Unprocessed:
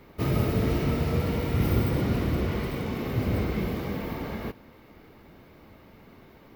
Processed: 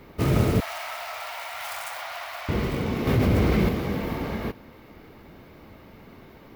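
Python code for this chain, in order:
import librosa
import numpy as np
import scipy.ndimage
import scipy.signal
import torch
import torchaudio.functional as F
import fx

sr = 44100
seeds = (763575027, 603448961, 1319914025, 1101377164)

y = fx.self_delay(x, sr, depth_ms=0.21)
y = fx.ellip_highpass(y, sr, hz=670.0, order=4, stop_db=40, at=(0.6, 2.49))
y = fx.env_flatten(y, sr, amount_pct=70, at=(3.07, 3.69))
y = F.gain(torch.from_numpy(y), 4.0).numpy()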